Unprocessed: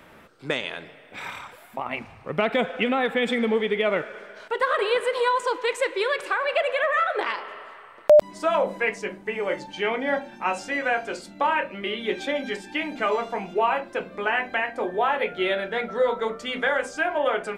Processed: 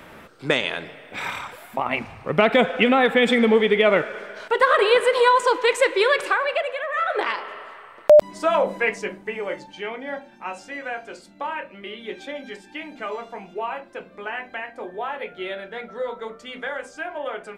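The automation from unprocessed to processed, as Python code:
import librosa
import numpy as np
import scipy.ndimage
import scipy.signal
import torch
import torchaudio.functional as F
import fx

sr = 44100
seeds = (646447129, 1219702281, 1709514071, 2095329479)

y = fx.gain(x, sr, db=fx.line((6.24, 6.0), (6.85, -6.0), (7.12, 2.5), (8.99, 2.5), (9.96, -6.5)))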